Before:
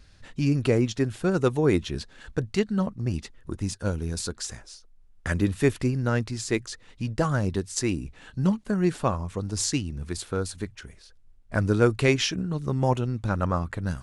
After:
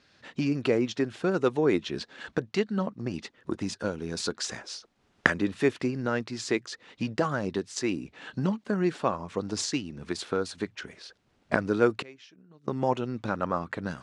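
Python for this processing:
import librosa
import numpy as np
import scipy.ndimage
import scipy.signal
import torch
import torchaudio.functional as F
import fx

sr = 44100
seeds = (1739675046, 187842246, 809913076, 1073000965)

y = fx.recorder_agc(x, sr, target_db=-14.0, rise_db_per_s=16.0, max_gain_db=30)
y = fx.gate_flip(y, sr, shuts_db=-19.0, range_db=-25, at=(12.01, 12.68))
y = fx.bandpass_edges(y, sr, low_hz=230.0, high_hz=5000.0)
y = y * 10.0 ** (-1.0 / 20.0)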